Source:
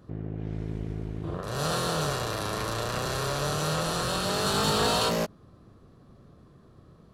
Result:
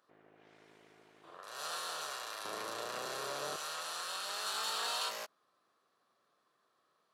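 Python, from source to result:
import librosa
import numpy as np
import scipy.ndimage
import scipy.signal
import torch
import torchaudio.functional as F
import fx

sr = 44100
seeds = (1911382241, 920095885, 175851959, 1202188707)

y = fx.highpass(x, sr, hz=fx.steps((0.0, 900.0), (2.45, 390.0), (3.56, 980.0)), slope=12)
y = y * 10.0 ** (-8.5 / 20.0)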